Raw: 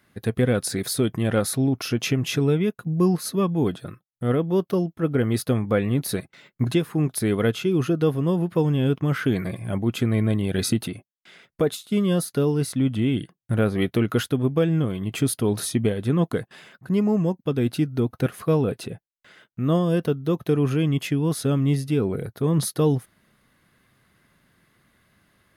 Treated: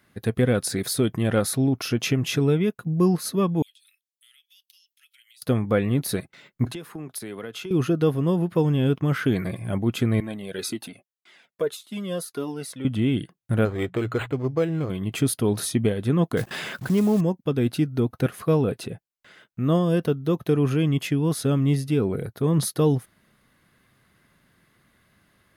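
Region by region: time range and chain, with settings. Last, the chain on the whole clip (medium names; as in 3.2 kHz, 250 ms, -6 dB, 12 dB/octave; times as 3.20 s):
3.62–5.42 s: steep high-pass 2.6 kHz + compression 10:1, threshold -52 dBFS
6.65–7.71 s: high-pass 380 Hz 6 dB/octave + compression 12:1, threshold -30 dBFS + three bands expanded up and down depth 40%
10.20–12.85 s: high-pass 260 Hz + Shepard-style flanger falling 1.8 Hz
13.65–14.90 s: peaking EQ 210 Hz -11 dB 0.74 oct + hum notches 60/120/180 Hz + decimation joined by straight lines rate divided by 8×
16.37–17.21 s: block-companded coder 5-bit + level flattener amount 50%
whole clip: none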